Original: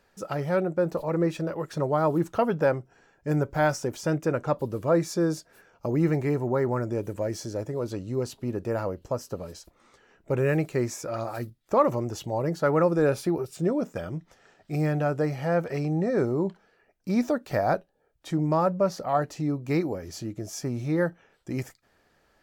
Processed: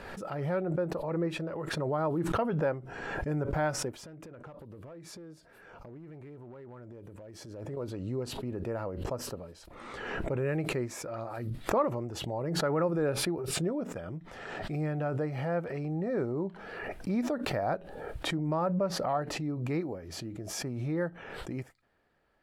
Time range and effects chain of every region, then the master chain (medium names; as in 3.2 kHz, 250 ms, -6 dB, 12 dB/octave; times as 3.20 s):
3.93–7.77 s: compression 10:1, threshold -37 dBFS + overload inside the chain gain 35.5 dB
whole clip: low-pass 9.3 kHz 12 dB/octave; peaking EQ 6.2 kHz -11.5 dB 0.98 oct; swell ahead of each attack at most 34 dB/s; trim -7 dB